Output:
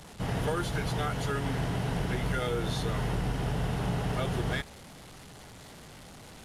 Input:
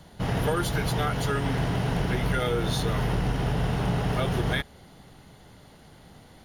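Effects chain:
linear delta modulator 64 kbit/s, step −38 dBFS
level −4.5 dB

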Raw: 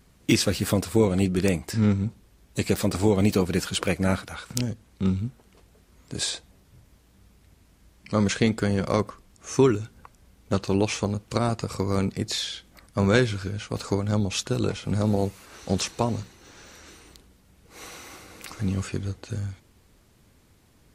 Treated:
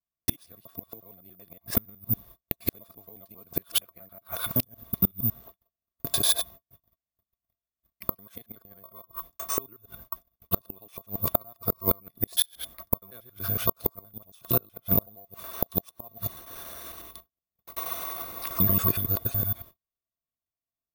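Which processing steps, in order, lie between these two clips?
reversed piece by piece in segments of 93 ms
noise gate −50 dBFS, range −44 dB
hollow resonant body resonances 680/1,100/3,500 Hz, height 18 dB, ringing for 55 ms
gate with flip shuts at −13 dBFS, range −34 dB
bad sample-rate conversion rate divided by 3×, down filtered, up zero stuff
level −1 dB

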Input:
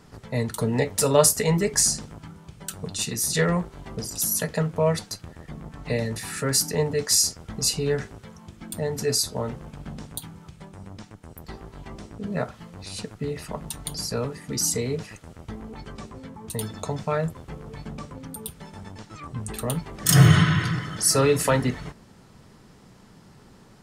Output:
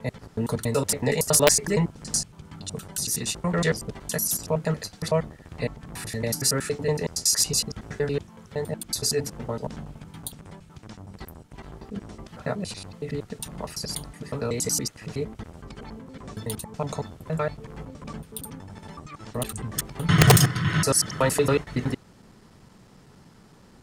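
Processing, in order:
slices reordered back to front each 93 ms, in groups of 4
wrap-around overflow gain 5.5 dB
level −1 dB

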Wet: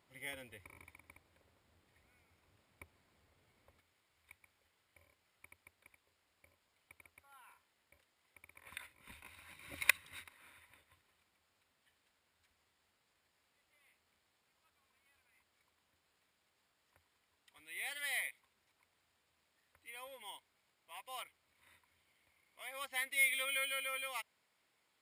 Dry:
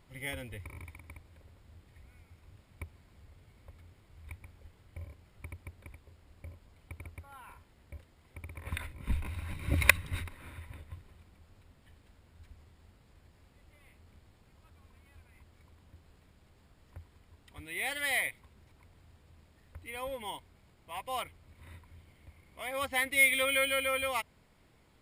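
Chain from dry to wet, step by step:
high-pass filter 410 Hz 6 dB per octave, from 0:03.80 1,500 Hz
level −6 dB

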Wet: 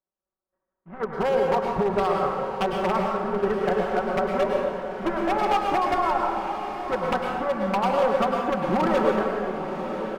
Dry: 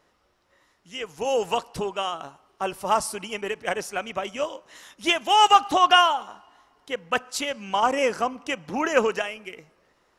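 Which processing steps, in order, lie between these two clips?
gap after every zero crossing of 0.2 ms
camcorder AGC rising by 5.4 dB per second
downward expander −47 dBFS
low-pass filter 1,500 Hz 24 dB per octave
comb filter 5.3 ms, depth 61%
downward compressor 16 to 1, threshold −22 dBFS, peak gain reduction 12 dB
wave folding −20.5 dBFS
on a send: feedback delay with all-pass diffusion 997 ms, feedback 46%, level −9 dB
on the sum: dense smooth reverb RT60 1.5 s, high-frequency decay 0.6×, pre-delay 90 ms, DRR 0.5 dB
level +3 dB

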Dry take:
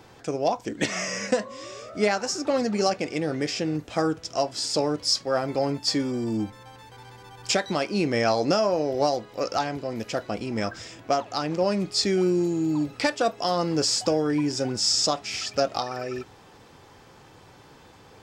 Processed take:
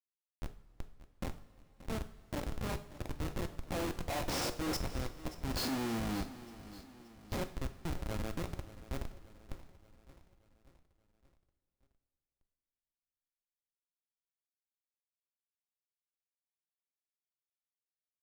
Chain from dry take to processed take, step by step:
every bin's largest magnitude spread in time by 60 ms
source passing by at 0:04.94, 20 m/s, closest 1.1 metres
high-pass filter 67 Hz 24 dB per octave
high-shelf EQ 2,600 Hz −2.5 dB
in parallel at −9.5 dB: sample-rate reduction 1,600 Hz, jitter 0%
on the sum: gate with flip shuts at −26 dBFS, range −29 dB
low-pass that shuts in the quiet parts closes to 2,400 Hz, open at −48.5 dBFS
comparator with hysteresis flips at −47.5 dBFS
repeating echo 579 ms, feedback 52%, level −16.5 dB
coupled-rooms reverb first 0.46 s, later 3.9 s, from −18 dB, DRR 7.5 dB
level +18 dB

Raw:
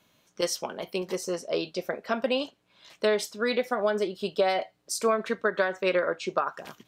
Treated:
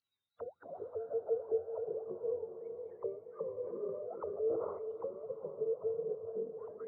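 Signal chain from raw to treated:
frequency axis turned over on the octave scale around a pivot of 500 Hz
low-shelf EQ 190 Hz +5 dB
downward compressor 12 to 1, threshold −33 dBFS, peak gain reduction 16 dB
chorus effect 1.5 Hz, delay 18 ms, depth 2.6 ms
envelope filter 450–4,400 Hz, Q 21, down, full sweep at −37 dBFS
feedback delay with all-pass diffusion 456 ms, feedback 52%, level −7 dB
0:03.61–0:04.92: level that may fall only so fast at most 43 dB per second
level +15 dB

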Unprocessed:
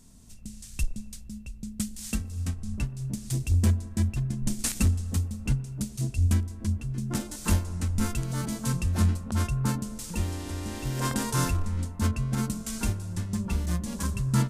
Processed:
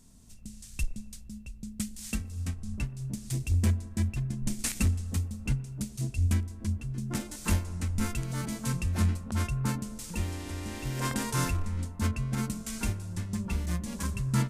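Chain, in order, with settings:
dynamic equaliser 2,200 Hz, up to +5 dB, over −54 dBFS, Q 2.1
level −3 dB

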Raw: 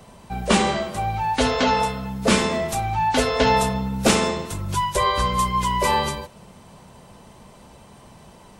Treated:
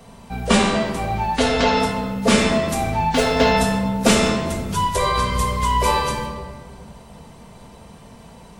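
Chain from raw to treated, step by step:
0:03.08–0:03.53: running median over 3 samples
rectangular room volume 1,600 cubic metres, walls mixed, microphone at 1.7 metres

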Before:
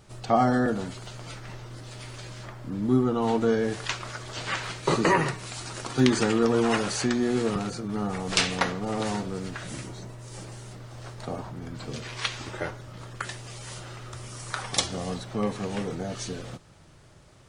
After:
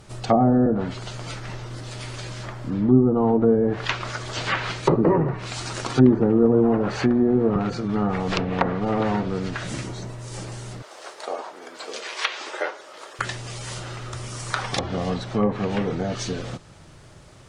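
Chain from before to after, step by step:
0:10.82–0:13.19: high-pass filter 410 Hz 24 dB per octave
treble cut that deepens with the level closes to 580 Hz, closed at −20 dBFS
level +6.5 dB

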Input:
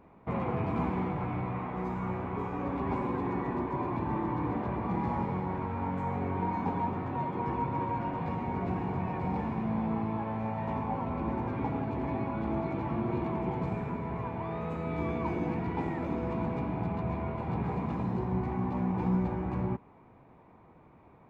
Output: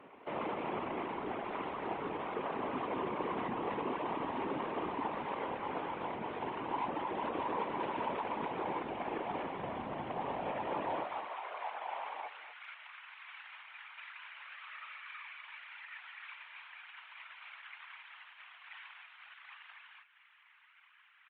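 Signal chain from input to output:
variable-slope delta modulation 16 kbit/s
high-frequency loss of the air 110 metres
loudspeakers that aren't time-aligned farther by 67 metres −7 dB, 78 metres −7 dB, 93 metres −5 dB
reverb reduction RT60 0.55 s
brickwall limiter −31.5 dBFS, peak gain reduction 14 dB
Butterworth high-pass 280 Hz 36 dB per octave, from 0:11.03 650 Hz, from 0:12.27 1,400 Hz
random phases in short frames
single-tap delay 246 ms −13.5 dB
level +4.5 dB
AAC 48 kbit/s 48,000 Hz

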